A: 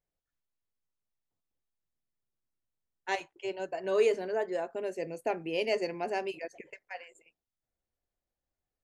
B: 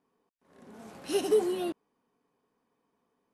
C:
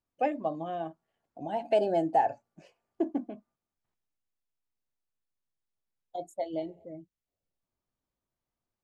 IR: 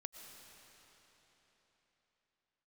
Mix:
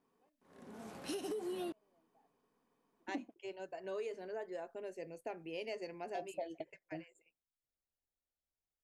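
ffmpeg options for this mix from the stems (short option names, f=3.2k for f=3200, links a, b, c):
-filter_complex "[0:a]volume=-10dB,asplit=2[a][b];[1:a]alimiter=limit=-23.5dB:level=0:latency=1:release=181,volume=-2dB[c];[2:a]volume=0dB[d];[b]apad=whole_len=389549[e];[d][e]sidechaingate=range=-50dB:threshold=-53dB:ratio=16:detection=peak[f];[a][c][f]amix=inputs=3:normalize=0,acompressor=threshold=-38dB:ratio=6"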